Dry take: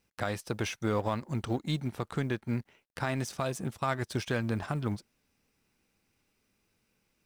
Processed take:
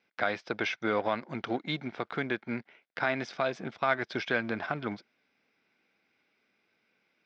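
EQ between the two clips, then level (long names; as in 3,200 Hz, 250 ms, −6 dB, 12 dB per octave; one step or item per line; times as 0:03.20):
high-frequency loss of the air 170 metres
loudspeaker in its box 270–6,500 Hz, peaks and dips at 690 Hz +5 dB, 1,500 Hz +8 dB, 2,200 Hz +10 dB, 3,500 Hz +7 dB, 5,100 Hz +6 dB
low-shelf EQ 490 Hz +3 dB
0.0 dB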